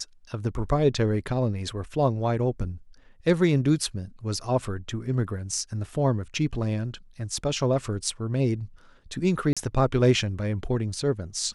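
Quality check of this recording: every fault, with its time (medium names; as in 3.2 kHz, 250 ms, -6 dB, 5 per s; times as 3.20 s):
9.53–9.57 s: dropout 36 ms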